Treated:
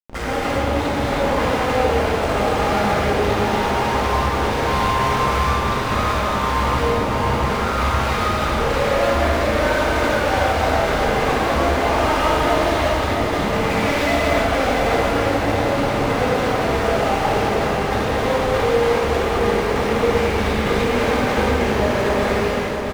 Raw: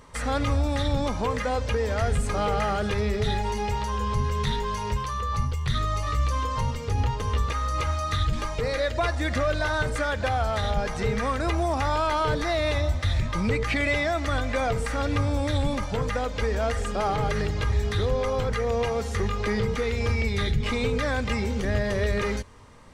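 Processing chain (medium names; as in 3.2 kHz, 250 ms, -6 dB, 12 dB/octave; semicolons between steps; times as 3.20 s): peak limiter -20 dBFS, peak gain reduction 6.5 dB; Schmitt trigger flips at -40 dBFS; overdrive pedal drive 26 dB, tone 1.9 kHz, clips at -21.5 dBFS; feedback delay 672 ms, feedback 57%, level -6.5 dB; gated-style reverb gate 430 ms flat, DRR -8 dB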